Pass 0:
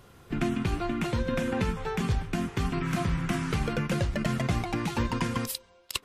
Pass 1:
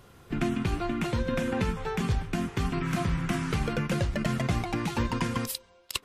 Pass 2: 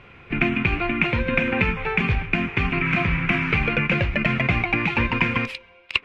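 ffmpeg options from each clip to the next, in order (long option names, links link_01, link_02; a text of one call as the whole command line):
ffmpeg -i in.wav -af anull out.wav
ffmpeg -i in.wav -af "lowpass=frequency=2400:width_type=q:width=6.9,volume=4.5dB" out.wav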